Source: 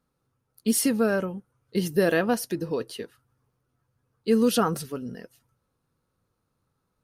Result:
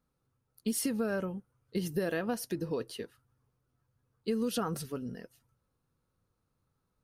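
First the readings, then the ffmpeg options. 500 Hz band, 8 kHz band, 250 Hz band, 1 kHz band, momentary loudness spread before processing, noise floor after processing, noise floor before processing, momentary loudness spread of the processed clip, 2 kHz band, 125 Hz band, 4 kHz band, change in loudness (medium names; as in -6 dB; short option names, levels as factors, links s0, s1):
-9.5 dB, -8.5 dB, -8.5 dB, -10.0 dB, 17 LU, -81 dBFS, -78 dBFS, 12 LU, -10.0 dB, -6.5 dB, -8.5 dB, -9.5 dB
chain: -af "lowshelf=f=99:g=6,acompressor=threshold=0.0708:ratio=6,volume=0.562"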